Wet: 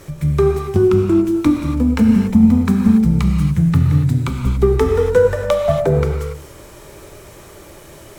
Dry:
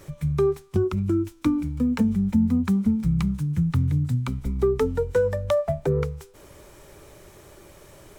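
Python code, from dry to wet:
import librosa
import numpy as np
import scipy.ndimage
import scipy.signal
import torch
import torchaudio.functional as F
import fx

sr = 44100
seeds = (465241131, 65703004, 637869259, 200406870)

y = fx.cheby_harmonics(x, sr, harmonics=(8,), levels_db=(-33,), full_scale_db=-9.0)
y = fx.rev_gated(y, sr, seeds[0], gate_ms=310, shape='flat', drr_db=1.5)
y = y * librosa.db_to_amplitude(7.0)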